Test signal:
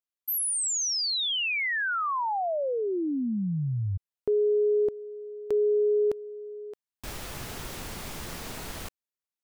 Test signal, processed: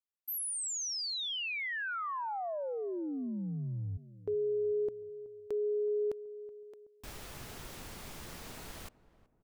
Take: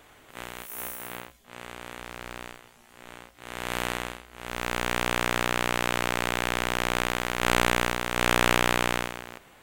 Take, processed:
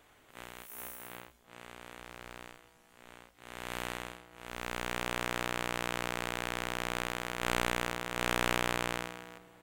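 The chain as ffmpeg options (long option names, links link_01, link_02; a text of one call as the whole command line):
ffmpeg -i in.wav -filter_complex "[0:a]asplit=2[link_01][link_02];[link_02]adelay=375,lowpass=frequency=930:poles=1,volume=-17dB,asplit=2[link_03][link_04];[link_04]adelay=375,lowpass=frequency=930:poles=1,volume=0.48,asplit=2[link_05][link_06];[link_06]adelay=375,lowpass=frequency=930:poles=1,volume=0.48,asplit=2[link_07][link_08];[link_08]adelay=375,lowpass=frequency=930:poles=1,volume=0.48[link_09];[link_01][link_03][link_05][link_07][link_09]amix=inputs=5:normalize=0,volume=-8.5dB" out.wav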